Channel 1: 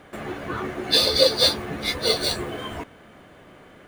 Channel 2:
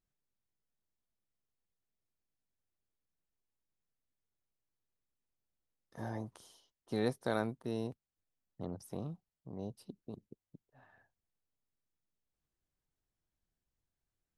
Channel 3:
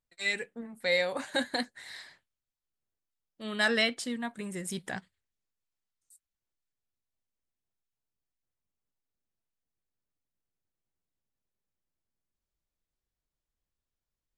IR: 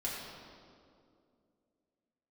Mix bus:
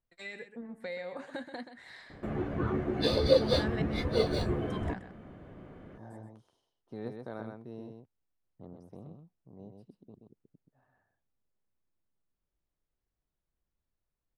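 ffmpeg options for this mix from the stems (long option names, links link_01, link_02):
-filter_complex "[0:a]lowshelf=frequency=350:gain=11.5,adelay=2100,volume=-6.5dB[link_01];[1:a]volume=-7dB,asplit=2[link_02][link_03];[link_03]volume=-5dB[link_04];[2:a]acompressor=threshold=-43dB:ratio=2.5,volume=2.5dB,asplit=3[link_05][link_06][link_07];[link_05]atrim=end=3.82,asetpts=PTS-STARTPTS,afade=type=out:start_time=3.816:duration=0.004:curve=hsin[link_08];[link_06]atrim=start=3.82:end=4.7,asetpts=PTS-STARTPTS,volume=0[link_09];[link_07]atrim=start=4.7,asetpts=PTS-STARTPTS,afade=type=in:duration=0.004:curve=hsin[link_10];[link_08][link_09][link_10]concat=n=3:v=0:a=1,asplit=2[link_11][link_12];[link_12]volume=-10.5dB[link_13];[link_04][link_13]amix=inputs=2:normalize=0,aecho=0:1:128:1[link_14];[link_01][link_02][link_11][link_14]amix=inputs=4:normalize=0,lowpass=frequency=1300:poles=1"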